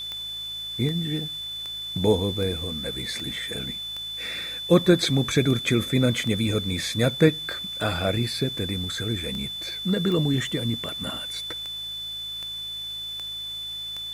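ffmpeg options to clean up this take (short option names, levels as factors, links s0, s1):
-af "adeclick=t=4,bandreject=f=54:t=h:w=4,bandreject=f=108:t=h:w=4,bandreject=f=162:t=h:w=4,bandreject=f=3500:w=30,afwtdn=0.0032"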